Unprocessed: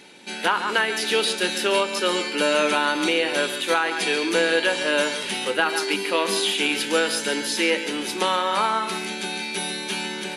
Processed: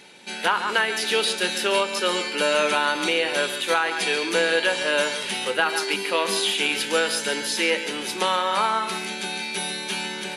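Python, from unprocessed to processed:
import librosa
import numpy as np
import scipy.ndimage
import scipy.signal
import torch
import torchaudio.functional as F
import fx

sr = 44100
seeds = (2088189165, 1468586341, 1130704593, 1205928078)

y = fx.peak_eq(x, sr, hz=290.0, db=-6.0, octaves=0.65)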